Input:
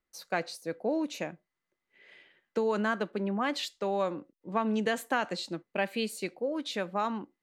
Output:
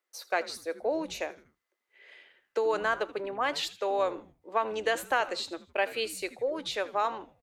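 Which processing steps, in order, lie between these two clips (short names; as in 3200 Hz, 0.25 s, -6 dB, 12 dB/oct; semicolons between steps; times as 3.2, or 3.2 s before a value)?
HPF 380 Hz 24 dB/oct; frequency-shifting echo 80 ms, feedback 40%, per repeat -130 Hz, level -17.5 dB; gain +2.5 dB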